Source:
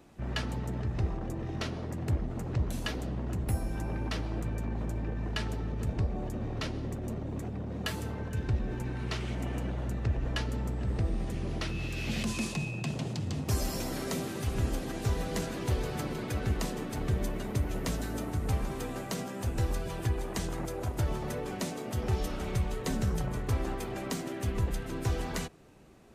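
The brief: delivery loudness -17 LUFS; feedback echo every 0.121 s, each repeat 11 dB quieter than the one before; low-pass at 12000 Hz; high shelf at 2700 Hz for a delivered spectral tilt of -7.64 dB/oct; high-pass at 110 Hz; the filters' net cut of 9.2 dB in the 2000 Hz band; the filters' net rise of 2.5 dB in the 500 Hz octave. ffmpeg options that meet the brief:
-af "highpass=110,lowpass=12k,equalizer=f=500:t=o:g=4,equalizer=f=2k:t=o:g=-8.5,highshelf=f=2.7k:g=-9,aecho=1:1:121|242|363:0.282|0.0789|0.0221,volume=19dB"

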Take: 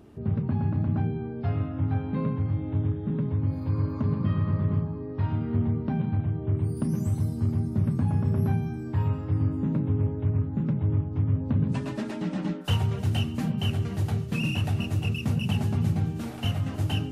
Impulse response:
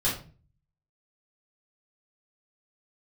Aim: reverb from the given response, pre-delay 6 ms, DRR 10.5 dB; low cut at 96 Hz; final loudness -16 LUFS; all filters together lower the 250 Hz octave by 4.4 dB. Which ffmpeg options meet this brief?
-filter_complex "[0:a]highpass=96,equalizer=f=250:t=o:g=-6,asplit=2[a][b];[1:a]atrim=start_sample=2205,adelay=6[c];[b][c]afir=irnorm=-1:irlink=0,volume=-20.5dB[d];[a][d]amix=inputs=2:normalize=0,volume=14dB"

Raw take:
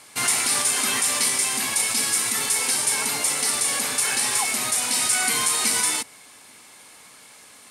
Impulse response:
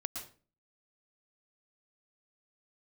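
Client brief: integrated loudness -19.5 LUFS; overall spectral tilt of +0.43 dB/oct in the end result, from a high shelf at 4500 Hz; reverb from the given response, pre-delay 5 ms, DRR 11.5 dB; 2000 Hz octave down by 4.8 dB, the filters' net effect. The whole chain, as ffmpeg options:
-filter_complex "[0:a]equalizer=f=2k:t=o:g=-7.5,highshelf=f=4.5k:g=7,asplit=2[a][b];[1:a]atrim=start_sample=2205,adelay=5[c];[b][c]afir=irnorm=-1:irlink=0,volume=-11.5dB[d];[a][d]amix=inputs=2:normalize=0,volume=-4.5dB"

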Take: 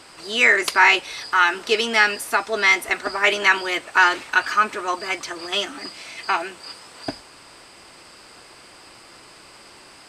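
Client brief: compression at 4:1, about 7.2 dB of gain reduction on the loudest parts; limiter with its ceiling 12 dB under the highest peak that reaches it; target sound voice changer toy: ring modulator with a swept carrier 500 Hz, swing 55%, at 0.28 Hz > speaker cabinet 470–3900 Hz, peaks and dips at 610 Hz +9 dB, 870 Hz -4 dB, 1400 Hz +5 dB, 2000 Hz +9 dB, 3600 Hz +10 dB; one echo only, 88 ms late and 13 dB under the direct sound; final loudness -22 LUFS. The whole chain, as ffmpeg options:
-af "acompressor=threshold=-19dB:ratio=4,alimiter=limit=-18.5dB:level=0:latency=1,aecho=1:1:88:0.224,aeval=exprs='val(0)*sin(2*PI*500*n/s+500*0.55/0.28*sin(2*PI*0.28*n/s))':c=same,highpass=470,equalizer=f=610:t=q:w=4:g=9,equalizer=f=870:t=q:w=4:g=-4,equalizer=f=1.4k:t=q:w=4:g=5,equalizer=f=2k:t=q:w=4:g=9,equalizer=f=3.6k:t=q:w=4:g=10,lowpass=f=3.9k:w=0.5412,lowpass=f=3.9k:w=1.3066,volume=5dB"

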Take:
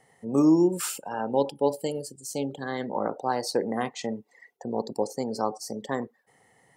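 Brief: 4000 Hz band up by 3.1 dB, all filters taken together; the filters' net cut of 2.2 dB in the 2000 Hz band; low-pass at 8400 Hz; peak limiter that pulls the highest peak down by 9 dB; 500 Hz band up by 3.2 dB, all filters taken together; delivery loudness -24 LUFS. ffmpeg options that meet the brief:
-af "lowpass=8.4k,equalizer=f=500:t=o:g=4,equalizer=f=2k:t=o:g=-4,equalizer=f=4k:t=o:g=5,volume=5.5dB,alimiter=limit=-11.5dB:level=0:latency=1"

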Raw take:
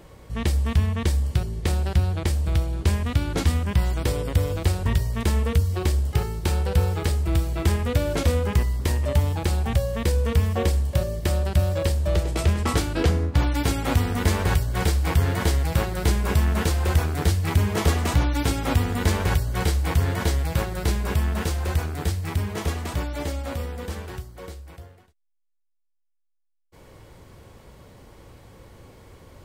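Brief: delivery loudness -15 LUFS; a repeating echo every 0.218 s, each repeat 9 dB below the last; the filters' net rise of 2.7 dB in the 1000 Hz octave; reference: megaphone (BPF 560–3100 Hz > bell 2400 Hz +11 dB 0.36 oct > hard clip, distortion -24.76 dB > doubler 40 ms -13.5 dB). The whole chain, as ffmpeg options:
-filter_complex "[0:a]highpass=560,lowpass=3.1k,equalizer=f=1k:t=o:g=4,equalizer=f=2.4k:t=o:w=0.36:g=11,aecho=1:1:218|436|654|872:0.355|0.124|0.0435|0.0152,asoftclip=type=hard:threshold=-18dB,asplit=2[a][b];[b]adelay=40,volume=-13.5dB[c];[a][c]amix=inputs=2:normalize=0,volume=14.5dB"

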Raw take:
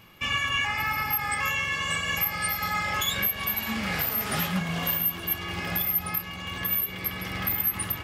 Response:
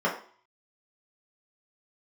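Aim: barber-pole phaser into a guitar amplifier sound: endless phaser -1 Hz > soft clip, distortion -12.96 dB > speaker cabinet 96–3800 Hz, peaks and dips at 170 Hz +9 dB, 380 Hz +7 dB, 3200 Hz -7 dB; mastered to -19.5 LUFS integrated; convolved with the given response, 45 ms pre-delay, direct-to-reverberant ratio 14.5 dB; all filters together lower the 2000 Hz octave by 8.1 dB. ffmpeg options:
-filter_complex "[0:a]equalizer=f=2k:t=o:g=-9,asplit=2[a][b];[1:a]atrim=start_sample=2205,adelay=45[c];[b][c]afir=irnorm=-1:irlink=0,volume=-28dB[d];[a][d]amix=inputs=2:normalize=0,asplit=2[e][f];[f]afreqshift=-1[g];[e][g]amix=inputs=2:normalize=1,asoftclip=threshold=-26.5dB,highpass=96,equalizer=f=170:t=q:w=4:g=9,equalizer=f=380:t=q:w=4:g=7,equalizer=f=3.2k:t=q:w=4:g=-7,lowpass=f=3.8k:w=0.5412,lowpass=f=3.8k:w=1.3066,volume=16dB"

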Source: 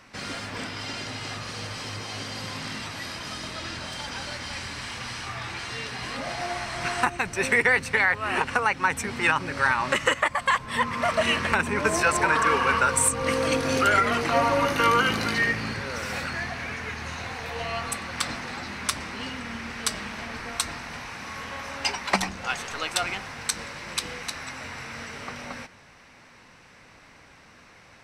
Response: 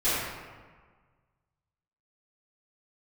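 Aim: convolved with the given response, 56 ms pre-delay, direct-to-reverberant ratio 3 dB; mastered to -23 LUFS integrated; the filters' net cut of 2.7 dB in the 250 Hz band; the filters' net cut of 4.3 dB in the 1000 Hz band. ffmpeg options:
-filter_complex "[0:a]equalizer=f=250:t=o:g=-3,equalizer=f=1k:t=o:g=-5.5,asplit=2[a][b];[1:a]atrim=start_sample=2205,adelay=56[c];[b][c]afir=irnorm=-1:irlink=0,volume=-16.5dB[d];[a][d]amix=inputs=2:normalize=0,volume=3.5dB"

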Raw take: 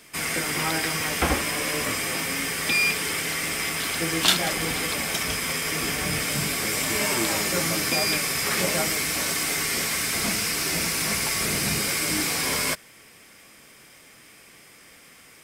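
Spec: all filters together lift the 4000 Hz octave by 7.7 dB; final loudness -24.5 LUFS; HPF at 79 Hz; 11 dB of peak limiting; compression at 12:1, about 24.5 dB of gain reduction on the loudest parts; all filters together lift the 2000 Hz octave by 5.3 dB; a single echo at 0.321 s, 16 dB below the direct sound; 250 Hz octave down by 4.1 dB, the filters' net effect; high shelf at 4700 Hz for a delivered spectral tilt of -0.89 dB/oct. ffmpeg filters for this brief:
-af "highpass=79,equalizer=f=250:t=o:g=-6,equalizer=f=2k:t=o:g=3.5,equalizer=f=4k:t=o:g=7,highshelf=f=4.7k:g=4,acompressor=threshold=-33dB:ratio=12,alimiter=level_in=5dB:limit=-24dB:level=0:latency=1,volume=-5dB,aecho=1:1:321:0.158,volume=12dB"

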